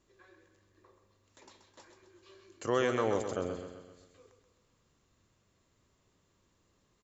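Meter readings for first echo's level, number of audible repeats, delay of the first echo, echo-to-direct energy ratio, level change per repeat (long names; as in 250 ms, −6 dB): −8.0 dB, 5, 130 ms, −6.5 dB, −6.0 dB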